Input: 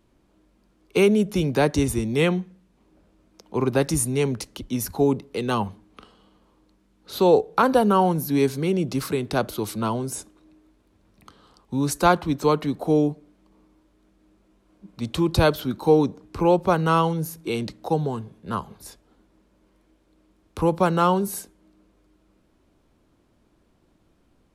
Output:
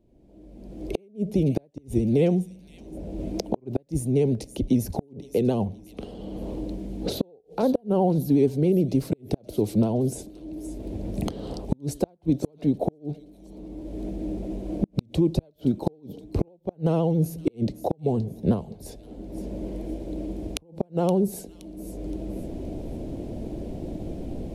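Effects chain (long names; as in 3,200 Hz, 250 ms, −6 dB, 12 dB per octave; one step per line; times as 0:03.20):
camcorder AGC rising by 32 dB per second
drawn EQ curve 670 Hz 0 dB, 1,200 Hz −25 dB, 2,300 Hz −14 dB
pitch vibrato 14 Hz 62 cents
on a send: delay with a high-pass on its return 521 ms, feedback 35%, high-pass 3,300 Hz, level −10.5 dB
on the sum: gate with flip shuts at −10 dBFS, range −36 dB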